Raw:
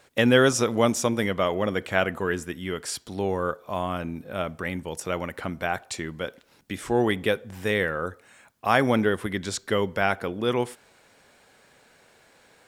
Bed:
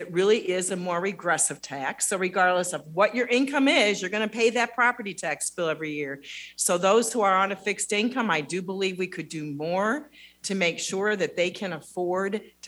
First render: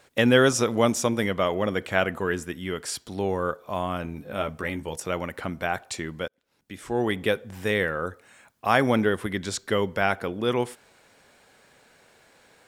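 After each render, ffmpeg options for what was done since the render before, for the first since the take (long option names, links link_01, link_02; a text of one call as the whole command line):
ffmpeg -i in.wav -filter_complex "[0:a]asettb=1/sr,asplit=3[link_01][link_02][link_03];[link_01]atrim=end=4.034[link_04];[link_02]atrim=start=4.03:end=4.96,asetpts=PTS-STARTPTS,afade=type=in:duration=0.004:curve=qsin,afade=type=out:start_time=0.926:duration=0.004:curve=qsin,asplit=2[link_05][link_06];[link_06]adelay=14,volume=-7dB[link_07];[link_05][link_07]amix=inputs=2:normalize=0,atrim=end_sample=41013[link_08];[link_03]atrim=start=4.956[link_09];[link_04][link_08]acrossfade=duration=0.004:curve1=hsin:curve2=qsin[link_10];[link_10][link_09]acrossfade=duration=0.004:curve1=qsin:curve2=hsin,asplit=2[link_11][link_12];[link_11]atrim=end=6.28,asetpts=PTS-STARTPTS,afade=type=out:start_time=6.276:duration=0.004:curve=hsin[link_13];[link_12]atrim=start=6.28,asetpts=PTS-STARTPTS,afade=type=in:duration=1.02[link_14];[link_13][link_14]concat=n=2:v=0:a=1" out.wav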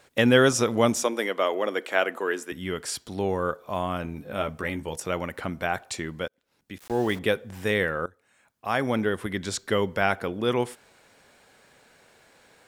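ffmpeg -i in.wav -filter_complex "[0:a]asettb=1/sr,asplit=3[link_01][link_02][link_03];[link_01]atrim=end=1.034[link_04];[link_02]atrim=start=1.03:end=2.52,asetpts=PTS-STARTPTS,afade=type=in:duration=0.004:curve=qsin,afade=type=out:start_time=1.486:duration=0.004:curve=qsin,highpass=frequency=290:width=0.5412,highpass=frequency=290:width=1.3066[link_05];[link_03]atrim=start=2.516[link_06];[link_04][link_05]acrossfade=duration=0.004:curve1=hsin:curve2=qsin[link_07];[link_07][link_06]acrossfade=duration=0.004:curve1=qsin:curve2=hsin,asettb=1/sr,asplit=3[link_08][link_09][link_10];[link_08]atrim=end=6.784[link_11];[link_09]atrim=start=6.78:end=7.19,asetpts=PTS-STARTPTS,afade=type=in:duration=0.004:curve=qsin,afade=type=out:start_time=0.406:duration=0.004:curve=qsin,aeval=exprs='val(0)*gte(abs(val(0)),0.0133)':channel_layout=same[link_12];[link_10]atrim=start=7.186[link_13];[link_11][link_12]acrossfade=duration=0.004:curve1=hsin:curve2=qsin[link_14];[link_14][link_13]acrossfade=duration=0.004:curve1=qsin:curve2=hsin,asplit=2[link_15][link_16];[link_15]atrim=end=8.06,asetpts=PTS-STARTPTS,afade=type=out:start_time=8.056:duration=0.004:curve=hsin:silence=0.133352[link_17];[link_16]atrim=start=8.06,asetpts=PTS-STARTPTS,afade=type=in:duration=1.47:silence=0.133352[link_18];[link_17][link_18]concat=n=2:v=0:a=1" out.wav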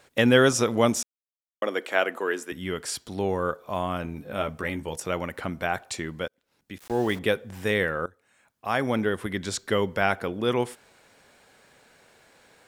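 ffmpeg -i in.wav -filter_complex "[0:a]asplit=3[link_01][link_02][link_03];[link_01]atrim=end=1.03,asetpts=PTS-STARTPTS,afade=type=out:start_time=1.026:duration=0.004:curve=hsin[link_04];[link_02]atrim=start=1.03:end=1.62,asetpts=PTS-STARTPTS,volume=0[link_05];[link_03]atrim=start=1.62,asetpts=PTS-STARTPTS,afade=type=in:duration=0.004:curve=hsin[link_06];[link_04][link_05][link_06]concat=n=3:v=0:a=1" out.wav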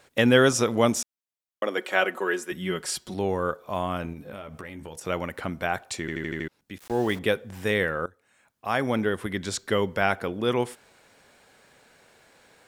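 ffmpeg -i in.wav -filter_complex "[0:a]asettb=1/sr,asplit=3[link_01][link_02][link_03];[link_01]atrim=end=1.774[link_04];[link_02]atrim=start=1.77:end=3.14,asetpts=PTS-STARTPTS,afade=type=in:duration=0.004:curve=qsin,afade=type=out:start_time=1.366:duration=0.004:curve=qsin,aecho=1:1:5.4:0.65,atrim=end_sample=60417[link_05];[link_03]atrim=start=3.136[link_06];[link_04][link_05]acrossfade=duration=0.004:curve1=hsin:curve2=qsin[link_07];[link_07][link_06]acrossfade=duration=0.004:curve1=qsin:curve2=hsin,asettb=1/sr,asplit=3[link_08][link_09][link_10];[link_08]atrim=end=4.134[link_11];[link_09]atrim=start=4.13:end=5.06,asetpts=PTS-STARTPTS,afade=type=in:duration=0.004:curve=qsin,afade=type=out:start_time=0.926:duration=0.004:curve=qsin,acompressor=threshold=-34dB:ratio=12:attack=3.2:release=140:knee=1:detection=peak[link_12];[link_10]atrim=start=5.056[link_13];[link_11][link_12]acrossfade=duration=0.004:curve1=hsin:curve2=qsin[link_14];[link_14][link_13]acrossfade=duration=0.004:curve1=qsin:curve2=hsin,asplit=7[link_15][link_16][link_17][link_18][link_19][link_20][link_21];[link_15]atrim=end=6.082[link_22];[link_16]atrim=start=5.998:end=6.082[link_23];[link_17]atrim=start=5.998:end=6.082[link_24];[link_18]atrim=start=5.998:end=6.082[link_25];[link_19]atrim=start=5.998:end=6.082[link_26];[link_20]atrim=start=5.998:end=6.082[link_27];[link_21]atrim=start=6.478[link_28];[link_22][link_23]acrossfade=duration=0.004:curve1=hsin:curve2=hsin[link_29];[link_29][link_24]acrossfade=duration=0.004:curve1=hsin:curve2=hsin[link_30];[link_30][link_25]acrossfade=duration=0.004:curve1=hsin:curve2=hsin[link_31];[link_31][link_26]acrossfade=duration=0.004:curve1=hsin:curve2=hsin[link_32];[link_32][link_27]acrossfade=duration=0.004:curve1=hsin:curve2=hsin[link_33];[link_33][link_28]acrossfade=duration=0.004:curve1=hsin:curve2=hsin" out.wav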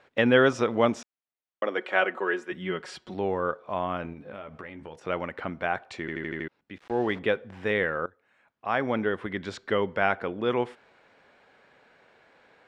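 ffmpeg -i in.wav -af "lowpass=2700,lowshelf=frequency=170:gain=-8.5" out.wav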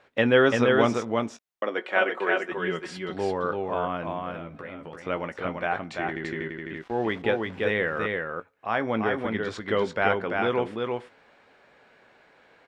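ffmpeg -i in.wav -filter_complex "[0:a]asplit=2[link_01][link_02];[link_02]adelay=18,volume=-11.5dB[link_03];[link_01][link_03]amix=inputs=2:normalize=0,aecho=1:1:340:0.668" out.wav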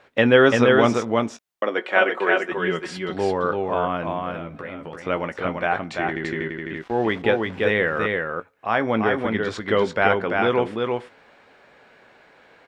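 ffmpeg -i in.wav -af "volume=5dB,alimiter=limit=-3dB:level=0:latency=1" out.wav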